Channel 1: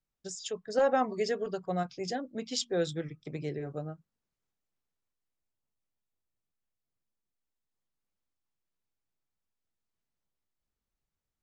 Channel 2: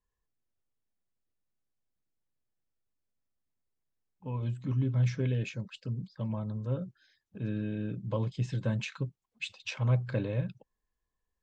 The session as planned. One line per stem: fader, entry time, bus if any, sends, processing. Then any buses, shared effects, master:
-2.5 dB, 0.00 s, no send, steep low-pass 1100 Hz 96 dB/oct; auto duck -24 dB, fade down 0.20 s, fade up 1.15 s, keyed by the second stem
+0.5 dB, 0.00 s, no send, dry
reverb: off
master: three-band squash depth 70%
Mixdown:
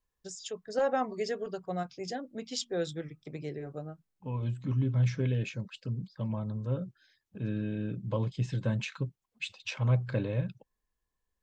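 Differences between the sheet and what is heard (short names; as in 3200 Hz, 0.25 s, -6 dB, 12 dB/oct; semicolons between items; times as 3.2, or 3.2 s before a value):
stem 1: missing steep low-pass 1100 Hz 96 dB/oct; master: missing three-band squash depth 70%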